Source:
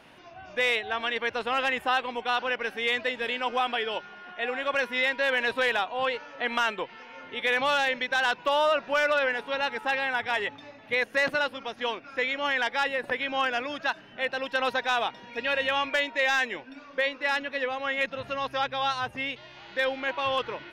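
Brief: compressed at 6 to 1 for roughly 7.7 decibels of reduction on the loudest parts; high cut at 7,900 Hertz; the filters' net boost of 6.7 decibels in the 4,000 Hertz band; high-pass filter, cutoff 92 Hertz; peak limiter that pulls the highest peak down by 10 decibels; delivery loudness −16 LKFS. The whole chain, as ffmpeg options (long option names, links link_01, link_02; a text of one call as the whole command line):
ffmpeg -i in.wav -af "highpass=92,lowpass=7900,equalizer=frequency=4000:width_type=o:gain=9,acompressor=threshold=-27dB:ratio=6,volume=19dB,alimiter=limit=-6dB:level=0:latency=1" out.wav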